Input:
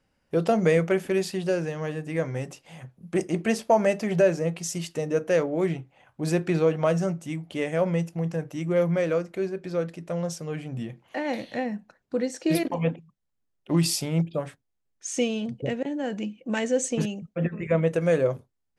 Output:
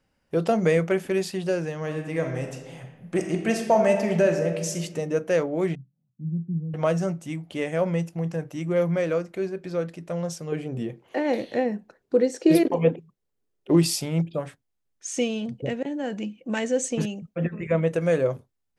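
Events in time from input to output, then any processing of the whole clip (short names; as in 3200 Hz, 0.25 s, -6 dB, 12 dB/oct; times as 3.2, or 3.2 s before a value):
1.79–4.79 reverb throw, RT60 1.2 s, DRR 4.5 dB
5.75–6.74 Butterworth band-pass 170 Hz, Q 2.4
10.52–13.84 bell 410 Hz +12 dB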